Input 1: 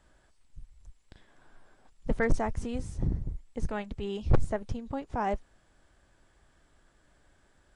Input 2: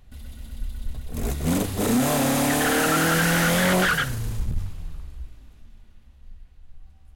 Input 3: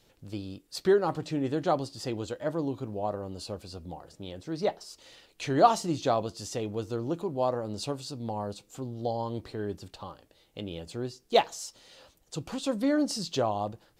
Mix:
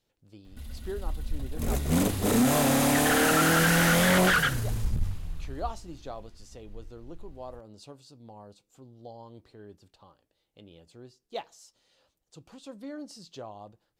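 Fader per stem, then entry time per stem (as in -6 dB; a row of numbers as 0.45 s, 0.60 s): mute, -1.5 dB, -14.0 dB; mute, 0.45 s, 0.00 s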